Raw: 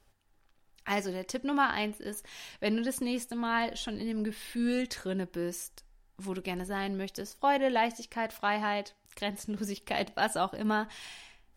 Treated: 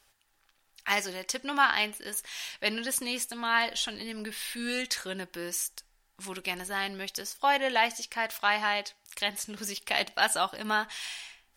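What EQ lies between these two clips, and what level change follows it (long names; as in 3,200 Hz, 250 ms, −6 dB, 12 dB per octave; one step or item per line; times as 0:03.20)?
tilt shelving filter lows −9 dB, about 710 Hz
0.0 dB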